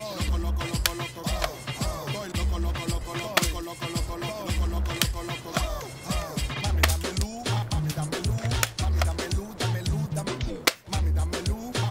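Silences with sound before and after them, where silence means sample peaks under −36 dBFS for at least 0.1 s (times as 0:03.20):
0:10.74–0:10.88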